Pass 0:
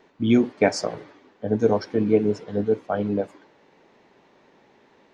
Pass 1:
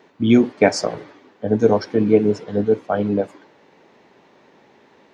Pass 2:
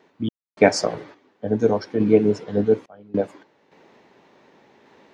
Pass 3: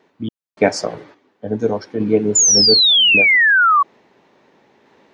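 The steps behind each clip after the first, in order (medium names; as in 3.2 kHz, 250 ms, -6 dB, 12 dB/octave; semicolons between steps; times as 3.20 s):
high-pass 68 Hz; trim +4.5 dB
random-step tremolo 3.5 Hz, depth 100%
painted sound fall, 2.35–3.83 s, 1.1–7.2 kHz -12 dBFS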